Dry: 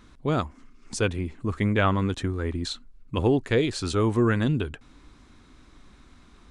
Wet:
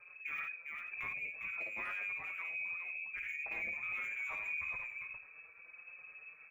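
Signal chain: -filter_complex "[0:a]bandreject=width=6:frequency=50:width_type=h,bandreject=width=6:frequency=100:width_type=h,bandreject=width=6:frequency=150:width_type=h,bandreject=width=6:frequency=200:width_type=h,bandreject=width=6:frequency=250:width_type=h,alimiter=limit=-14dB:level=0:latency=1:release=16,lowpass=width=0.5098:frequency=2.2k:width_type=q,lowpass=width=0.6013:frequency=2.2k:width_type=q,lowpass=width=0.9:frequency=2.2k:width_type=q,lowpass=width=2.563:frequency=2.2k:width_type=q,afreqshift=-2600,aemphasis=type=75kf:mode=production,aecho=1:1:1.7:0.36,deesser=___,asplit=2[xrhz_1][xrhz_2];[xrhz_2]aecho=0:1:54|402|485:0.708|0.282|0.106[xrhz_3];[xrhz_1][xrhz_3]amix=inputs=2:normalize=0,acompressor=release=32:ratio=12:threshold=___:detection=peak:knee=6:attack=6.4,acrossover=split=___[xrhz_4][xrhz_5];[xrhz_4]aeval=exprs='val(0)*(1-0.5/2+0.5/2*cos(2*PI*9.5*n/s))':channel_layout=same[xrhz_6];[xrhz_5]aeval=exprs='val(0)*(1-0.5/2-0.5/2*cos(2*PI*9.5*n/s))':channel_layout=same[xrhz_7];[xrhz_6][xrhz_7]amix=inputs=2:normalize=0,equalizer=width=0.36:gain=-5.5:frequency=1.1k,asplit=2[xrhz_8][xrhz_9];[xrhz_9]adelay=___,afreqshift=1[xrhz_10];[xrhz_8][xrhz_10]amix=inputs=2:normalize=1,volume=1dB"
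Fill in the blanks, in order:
0.8, -31dB, 2300, 5.1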